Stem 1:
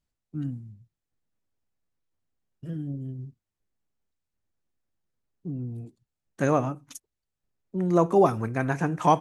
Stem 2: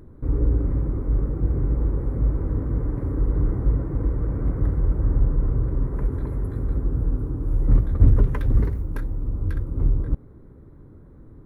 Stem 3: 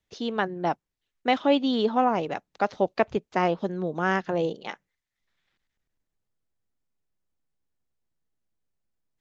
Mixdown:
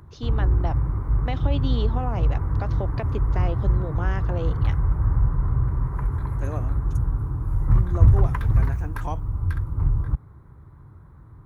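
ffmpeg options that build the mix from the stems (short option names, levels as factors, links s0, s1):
-filter_complex "[0:a]volume=0.251[s0];[1:a]equalizer=f=125:t=o:w=1:g=3,equalizer=f=250:t=o:w=1:g=-11,equalizer=f=500:t=o:w=1:g=-11,equalizer=f=1000:t=o:w=1:g=8,volume=1.33[s1];[2:a]alimiter=limit=0.188:level=0:latency=1,volume=0.596[s2];[s0][s1][s2]amix=inputs=3:normalize=0,highpass=48,acrossover=split=210[s3][s4];[s4]acompressor=threshold=0.0501:ratio=6[s5];[s3][s5]amix=inputs=2:normalize=0"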